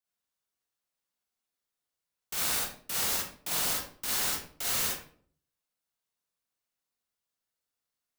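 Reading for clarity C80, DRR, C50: 5.5 dB, −4.5 dB, −1.0 dB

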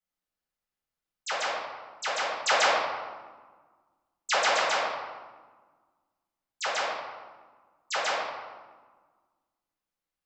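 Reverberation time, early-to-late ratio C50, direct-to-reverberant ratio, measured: 1.5 s, −0.5 dB, −10.5 dB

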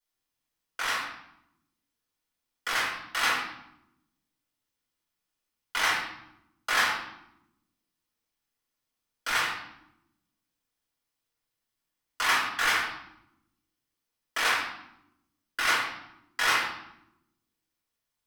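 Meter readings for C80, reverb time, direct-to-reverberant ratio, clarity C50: 6.0 dB, 0.90 s, −6.0 dB, 2.5 dB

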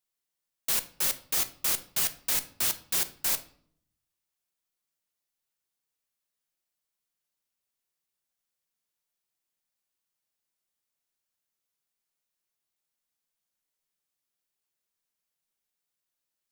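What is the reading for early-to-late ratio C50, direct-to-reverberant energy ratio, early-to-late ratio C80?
15.5 dB, 8.5 dB, 19.5 dB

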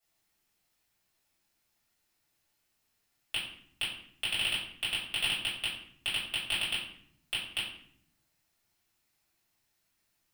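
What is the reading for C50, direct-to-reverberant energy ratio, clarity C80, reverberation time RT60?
4.0 dB, −10.5 dB, 8.0 dB, 0.65 s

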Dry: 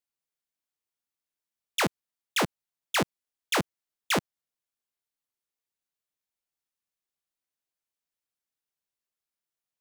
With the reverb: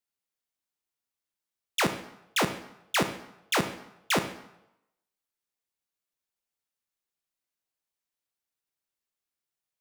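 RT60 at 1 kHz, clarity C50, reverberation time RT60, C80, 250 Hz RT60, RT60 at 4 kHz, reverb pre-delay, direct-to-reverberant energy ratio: 0.90 s, 10.5 dB, 0.85 s, 13.0 dB, 0.75 s, 0.70 s, 24 ms, 8.0 dB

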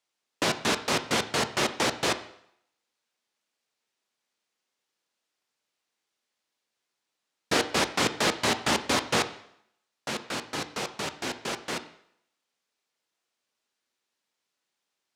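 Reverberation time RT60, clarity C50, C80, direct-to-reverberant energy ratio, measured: 0.70 s, 13.5 dB, 16.0 dB, 9.0 dB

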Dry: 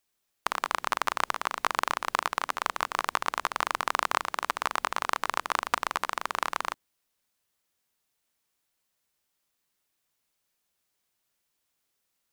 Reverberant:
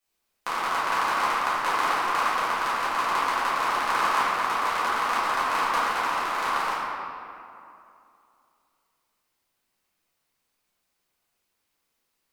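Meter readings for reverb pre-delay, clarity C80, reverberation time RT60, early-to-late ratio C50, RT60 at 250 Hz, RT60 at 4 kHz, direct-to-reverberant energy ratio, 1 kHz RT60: 4 ms, −0.5 dB, 2.6 s, −3.0 dB, 2.9 s, 1.5 s, −13.0 dB, 2.6 s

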